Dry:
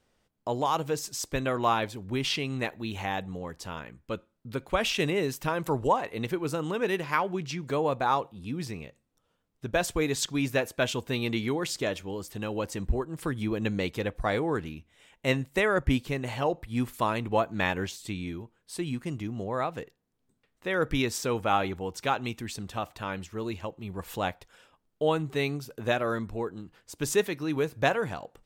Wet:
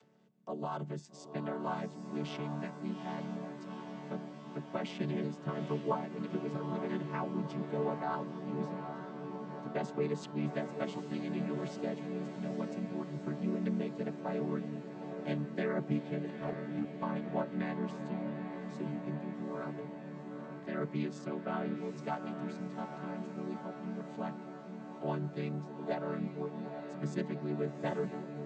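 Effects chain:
channel vocoder with a chord as carrier major triad, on D3
upward compression, threshold −47 dBFS
0:16.30–0:17.03: power curve on the samples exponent 1.4
feedback delay with all-pass diffusion 839 ms, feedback 74%, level −7.5 dB
level −7.5 dB

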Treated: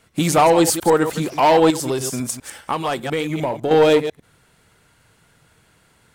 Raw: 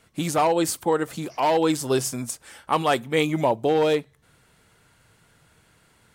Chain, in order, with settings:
delay that plays each chunk backwards 100 ms, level −10.5 dB
leveller curve on the samples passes 1
0:01.70–0:03.71: downward compressor, threshold −24 dBFS, peak gain reduction 9.5 dB
level +4 dB

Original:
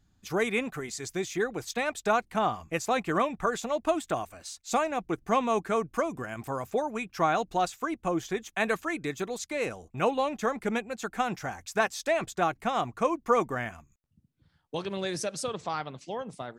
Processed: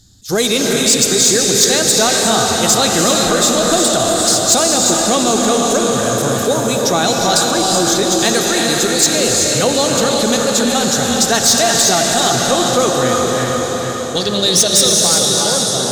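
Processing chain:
mains-hum notches 50/100/150 Hz
wrong playback speed 24 fps film run at 25 fps
graphic EQ with 15 bands 100 Hz +8 dB, 1,000 Hz −7 dB, 2,500 Hz −9 dB, 10,000 Hz −4 dB
on a send: feedback delay with all-pass diffusion 464 ms, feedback 57%, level −5.5 dB
on the sum: reverb whose tail is shaped and stops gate 400 ms rising, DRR 2 dB
in parallel at +2 dB: brickwall limiter −23.5 dBFS, peak gain reduction 10.5 dB
on the sum: flat-topped bell 6,400 Hz +16 dB 2.3 octaves
soft clipping −11.5 dBFS, distortion −19 dB
level that may rise only so fast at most 260 dB per second
level +8 dB

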